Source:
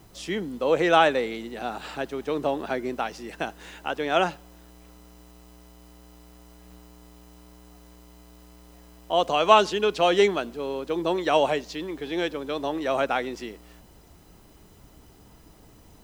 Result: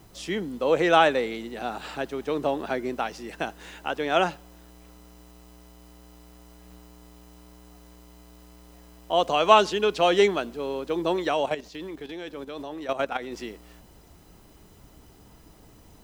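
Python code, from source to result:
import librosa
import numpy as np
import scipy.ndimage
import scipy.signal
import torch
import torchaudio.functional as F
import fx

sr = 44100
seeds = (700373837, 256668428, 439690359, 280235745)

y = fx.level_steps(x, sr, step_db=12, at=(11.27, 13.32))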